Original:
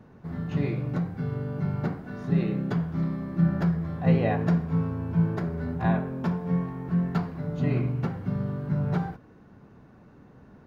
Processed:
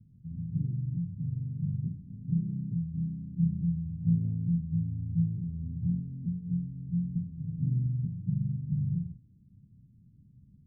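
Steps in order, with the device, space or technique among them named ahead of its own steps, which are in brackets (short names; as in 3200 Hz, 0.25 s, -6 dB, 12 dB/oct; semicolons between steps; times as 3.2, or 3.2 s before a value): 8.14–8.56 comb 6.3 ms, depth 67%; the neighbour's flat through the wall (LPF 190 Hz 24 dB/oct; bell 110 Hz +4.5 dB 0.97 oct); gain -5 dB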